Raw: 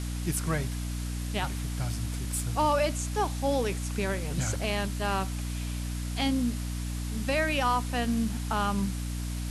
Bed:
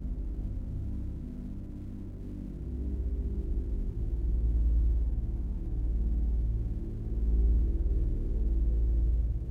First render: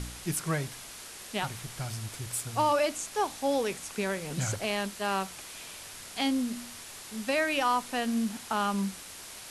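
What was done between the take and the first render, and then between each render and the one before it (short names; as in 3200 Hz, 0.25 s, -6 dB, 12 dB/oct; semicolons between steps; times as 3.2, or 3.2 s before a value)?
de-hum 60 Hz, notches 5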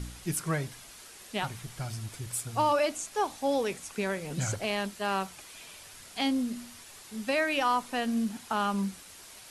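denoiser 6 dB, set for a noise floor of -45 dBFS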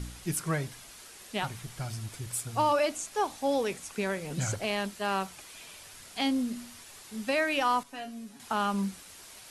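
7.83–8.4 resonator 140 Hz, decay 0.21 s, mix 90%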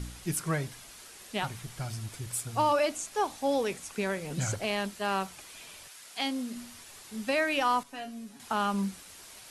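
5.87–6.54 HPF 1100 Hz -> 280 Hz 6 dB/oct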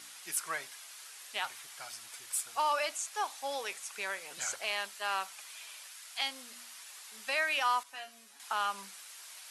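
HPF 990 Hz 12 dB/oct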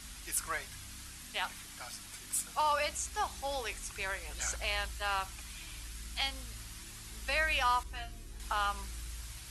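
add bed -17 dB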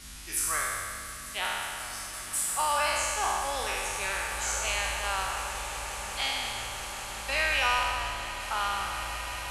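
spectral trails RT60 2.06 s; swelling echo 0.18 s, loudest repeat 8, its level -17.5 dB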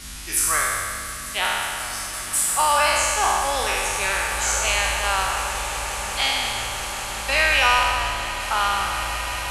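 gain +8.5 dB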